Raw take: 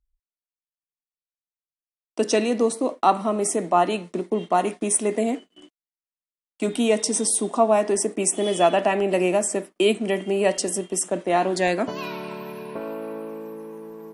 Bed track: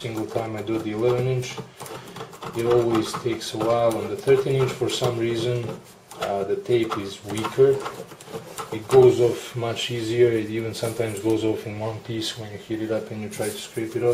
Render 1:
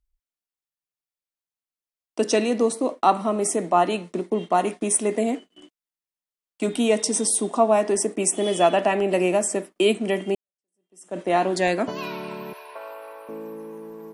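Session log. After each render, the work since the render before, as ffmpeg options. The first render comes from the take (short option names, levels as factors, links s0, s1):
-filter_complex "[0:a]asettb=1/sr,asplit=3[s0][s1][s2];[s0]atrim=end=12.534[s3];[s1]atrim=start=12.53:end=13.29,asetpts=PTS-STARTPTS,afade=t=in:d=0.004:c=qsin,afade=t=out:st=0.756:d=0.004:c=qsin,highpass=f=620:w=0.5412,highpass=f=620:w=1.3066[s4];[s2]atrim=start=13.286[s5];[s3][s4]acrossfade=d=0.004:c1=hsin:c2=qsin[s6];[s6][s5]acrossfade=d=0.004:c1=qsin:c2=hsin,asplit=2[s7][s8];[s7]atrim=end=10.35,asetpts=PTS-STARTPTS,afade=t=out:st=10.346:d=0.004:c=hsin[s9];[s8]atrim=start=10.35,asetpts=PTS-STARTPTS,afade=t=in:d=0.84:c=exp[s10];[s9][s10]concat=n=2:v=0:a=1"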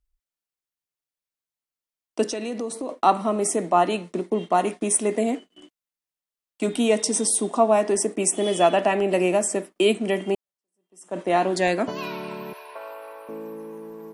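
-filter_complex "[0:a]asplit=3[s0][s1][s2];[s0]afade=t=out:st=2.27:d=0.02[s3];[s1]acompressor=threshold=0.0447:ratio=4:attack=3.2:release=140:knee=1:detection=peak,afade=t=in:st=2.27:d=0.02,afade=t=out:st=2.88:d=0.02[s4];[s2]afade=t=in:st=2.88:d=0.02[s5];[s3][s4][s5]amix=inputs=3:normalize=0,asettb=1/sr,asplit=3[s6][s7][s8];[s6]atrim=end=10.234[s9];[s7]atrim=start=10.23:end=11.26,asetpts=PTS-STARTPTS,afade=t=in:d=0.004:c=qsin,afade=t=out:st=1.026:d=0.004:c=qsin,equalizer=f=1000:t=o:w=0.77:g=5.5[s10];[s8]atrim=start=11.256[s11];[s9][s10]acrossfade=d=0.004:c1=hsin:c2=qsin[s12];[s12][s11]acrossfade=d=0.004:c1=qsin:c2=hsin"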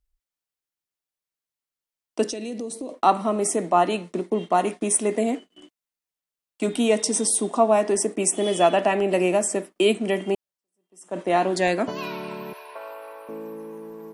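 -filter_complex "[0:a]asettb=1/sr,asplit=3[s0][s1][s2];[s0]atrim=end=2.314[s3];[s1]atrim=start=2.31:end=2.94,asetpts=PTS-STARTPTS,afade=t=in:d=0.004:c=qsin,afade=t=out:st=0.626:d=0.004:c=qsin,equalizer=f=1200:w=0.82:g=-11.5[s4];[s2]atrim=start=2.936[s5];[s3][s4]acrossfade=d=0.004:c1=hsin:c2=qsin[s6];[s6][s5]acrossfade=d=0.004:c1=qsin:c2=hsin"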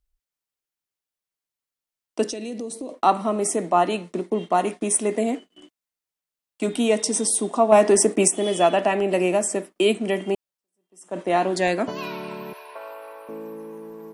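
-filter_complex "[0:a]asettb=1/sr,asplit=3[s0][s1][s2];[s0]atrim=end=7.724[s3];[s1]atrim=start=7.72:end=8.28,asetpts=PTS-STARTPTS,afade=t=in:d=0.004:c=qsin,afade=t=out:st=0.556:d=0.004:c=qsin,acontrast=54[s4];[s2]atrim=start=8.276[s5];[s3][s4]acrossfade=d=0.004:c1=hsin:c2=qsin[s6];[s6][s5]acrossfade=d=0.004:c1=qsin:c2=hsin"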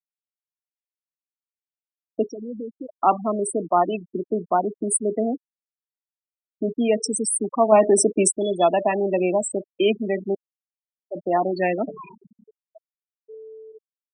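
-af "afftfilt=real='re*gte(hypot(re,im),0.141)':imag='im*gte(hypot(re,im),0.141)':win_size=1024:overlap=0.75"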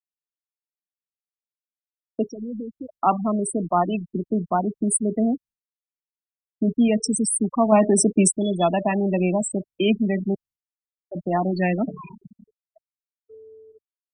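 -af "asubboost=boost=8:cutoff=150,agate=range=0.0224:threshold=0.00562:ratio=3:detection=peak"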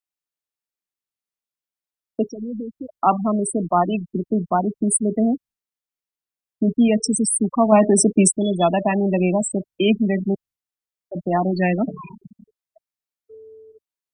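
-af "volume=1.33"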